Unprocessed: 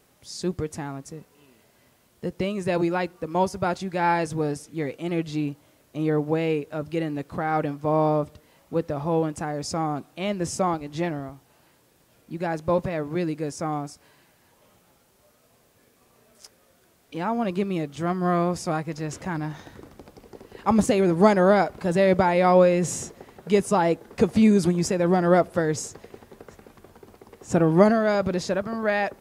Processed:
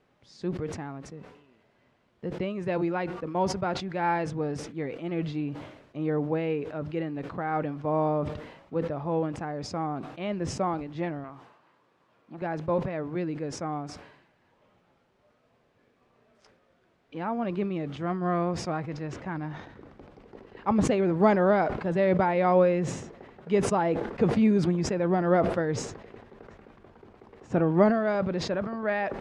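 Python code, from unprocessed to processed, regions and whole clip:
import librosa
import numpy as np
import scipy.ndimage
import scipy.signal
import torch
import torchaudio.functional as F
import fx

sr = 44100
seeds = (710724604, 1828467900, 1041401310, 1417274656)

y = fx.chain(x, sr, fx.highpass(hz=200.0, slope=6),
    fx.peak_eq(hz=1100.0, db=9.0, octaves=0.51),
    fx.transformer_sat(knee_hz=590.0), at=(11.24, 12.42))
y = scipy.signal.sosfilt(scipy.signal.butter(2, 2800.0, 'lowpass', fs=sr, output='sos'), y)
y = fx.peak_eq(y, sr, hz=64.0, db=-4.5, octaves=0.89)
y = fx.sustainer(y, sr, db_per_s=67.0)
y = y * 10.0 ** (-4.5 / 20.0)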